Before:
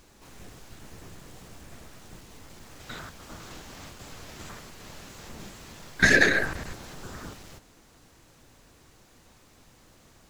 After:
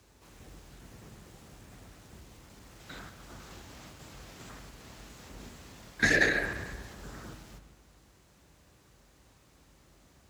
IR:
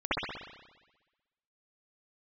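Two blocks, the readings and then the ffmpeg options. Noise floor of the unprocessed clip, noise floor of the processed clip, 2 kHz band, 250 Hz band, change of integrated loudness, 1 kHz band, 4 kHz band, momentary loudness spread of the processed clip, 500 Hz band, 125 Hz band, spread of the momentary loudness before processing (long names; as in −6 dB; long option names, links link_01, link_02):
−58 dBFS, −62 dBFS, −5.5 dB, −5.0 dB, −6.0 dB, −5.0 dB, −6.0 dB, 24 LU, −5.0 dB, −4.5 dB, 25 LU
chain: -filter_complex "[0:a]afreqshift=39,asplit=2[link_01][link_02];[1:a]atrim=start_sample=2205,lowshelf=frequency=150:gain=10.5[link_03];[link_02][link_03]afir=irnorm=-1:irlink=0,volume=-20.5dB[link_04];[link_01][link_04]amix=inputs=2:normalize=0,volume=-6.5dB"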